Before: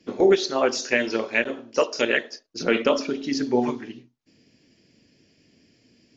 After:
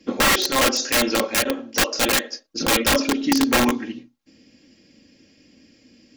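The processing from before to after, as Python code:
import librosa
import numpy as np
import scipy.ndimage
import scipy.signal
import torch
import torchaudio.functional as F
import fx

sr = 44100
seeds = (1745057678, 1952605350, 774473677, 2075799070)

y = (np.mod(10.0 ** (17.0 / 20.0) * x + 1.0, 2.0) - 1.0) / 10.0 ** (17.0 / 20.0)
y = y + 0.54 * np.pad(y, (int(3.7 * sr / 1000.0), 0))[:len(y)]
y = y * librosa.db_to_amplitude(4.5)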